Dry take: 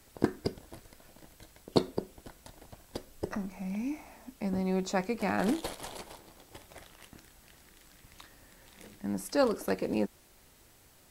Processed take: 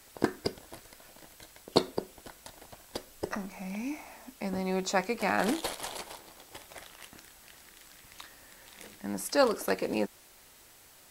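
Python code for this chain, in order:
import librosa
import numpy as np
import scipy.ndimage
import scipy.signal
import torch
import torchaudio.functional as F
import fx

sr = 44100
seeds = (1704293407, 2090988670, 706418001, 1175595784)

y = fx.low_shelf(x, sr, hz=380.0, db=-10.5)
y = y * 10.0 ** (5.5 / 20.0)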